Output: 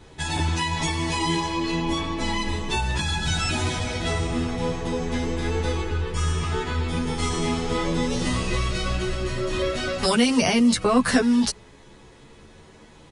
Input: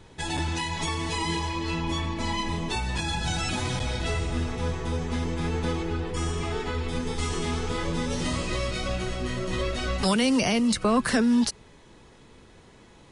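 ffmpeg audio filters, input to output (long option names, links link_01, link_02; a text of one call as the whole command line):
ffmpeg -i in.wav -filter_complex "[0:a]asplit=2[link_01][link_02];[link_02]adelay=10.9,afreqshift=0.32[link_03];[link_01][link_03]amix=inputs=2:normalize=1,volume=6.5dB" out.wav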